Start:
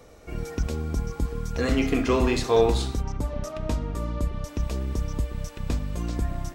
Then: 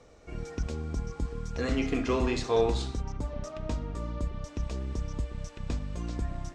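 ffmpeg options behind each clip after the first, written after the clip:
ffmpeg -i in.wav -af "lowpass=frequency=8100:width=0.5412,lowpass=frequency=8100:width=1.3066,volume=-5.5dB" out.wav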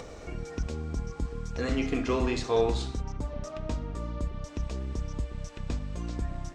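ffmpeg -i in.wav -af "acompressor=mode=upward:threshold=-32dB:ratio=2.5" out.wav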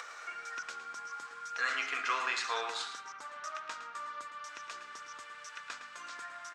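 ffmpeg -i in.wav -filter_complex "[0:a]highpass=frequency=1400:width_type=q:width=3.7,asplit=2[link_01][link_02];[link_02]adelay=110.8,volume=-10dB,highshelf=frequency=4000:gain=-2.49[link_03];[link_01][link_03]amix=inputs=2:normalize=0" out.wav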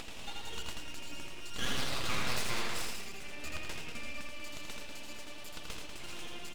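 ffmpeg -i in.wav -af "aeval=exprs='(tanh(28.2*val(0)+0.4)-tanh(0.4))/28.2':channel_layout=same,aeval=exprs='abs(val(0))':channel_layout=same,aecho=1:1:81.63|192.4:0.631|0.316,volume=3.5dB" out.wav

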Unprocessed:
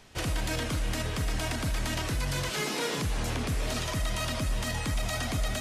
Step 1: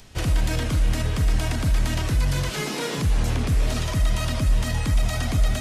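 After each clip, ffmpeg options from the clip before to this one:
ffmpeg -i in.wav -filter_complex "[0:a]lowshelf=frequency=180:gain=9.5,acrossover=split=3000[link_01][link_02];[link_02]acompressor=mode=upward:threshold=-54dB:ratio=2.5[link_03];[link_01][link_03]amix=inputs=2:normalize=0,volume=2dB" out.wav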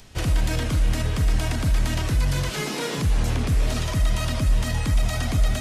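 ffmpeg -i in.wav -af anull out.wav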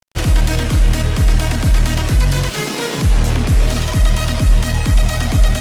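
ffmpeg -i in.wav -af "aeval=exprs='sgn(val(0))*max(abs(val(0))-0.0106,0)':channel_layout=same,volume=9dB" out.wav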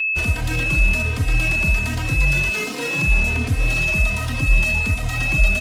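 ffmpeg -i in.wav -filter_complex "[0:a]aeval=exprs='val(0)+0.2*sin(2*PI*2600*n/s)':channel_layout=same,asplit=2[link_01][link_02];[link_02]adelay=3.1,afreqshift=1.3[link_03];[link_01][link_03]amix=inputs=2:normalize=1,volume=-4dB" out.wav

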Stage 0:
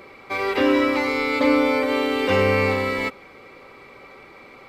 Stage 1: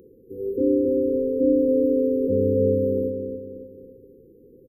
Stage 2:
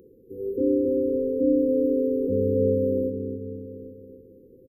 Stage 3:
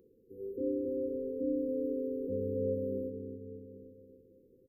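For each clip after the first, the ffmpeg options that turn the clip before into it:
ffmpeg -i in.wav -filter_complex "[0:a]acrossover=split=4400[link_01][link_02];[link_02]acompressor=threshold=-50dB:ratio=4:attack=1:release=60[link_03];[link_01][link_03]amix=inputs=2:normalize=0,asplit=2[link_04][link_05];[link_05]adelay=275,lowpass=frequency=4700:poles=1,volume=-5.5dB,asplit=2[link_06][link_07];[link_07]adelay=275,lowpass=frequency=4700:poles=1,volume=0.42,asplit=2[link_08][link_09];[link_09]adelay=275,lowpass=frequency=4700:poles=1,volume=0.42,asplit=2[link_10][link_11];[link_11]adelay=275,lowpass=frequency=4700:poles=1,volume=0.42,asplit=2[link_12][link_13];[link_13]adelay=275,lowpass=frequency=4700:poles=1,volume=0.42[link_14];[link_04][link_06][link_08][link_10][link_12][link_14]amix=inputs=6:normalize=0,afftfilt=real='re*(1-between(b*sr/4096,530,11000))':imag='im*(1-between(b*sr/4096,530,11000))':win_size=4096:overlap=0.75,volume=-1.5dB" out.wav
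ffmpeg -i in.wav -filter_complex "[0:a]asplit=2[link_01][link_02];[link_02]adelay=816.3,volume=-13dB,highshelf=frequency=4000:gain=-18.4[link_03];[link_01][link_03]amix=inputs=2:normalize=0,volume=-2dB" out.wav
ffmpeg -i in.wav -af "flanger=delay=4.3:depth=1.6:regen=89:speed=0.6:shape=sinusoidal,volume=-7dB" out.wav

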